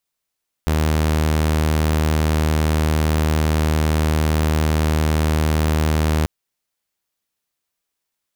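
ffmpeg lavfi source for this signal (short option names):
-f lavfi -i "aevalsrc='0.224*(2*mod(77.6*t,1)-1)':d=5.59:s=44100"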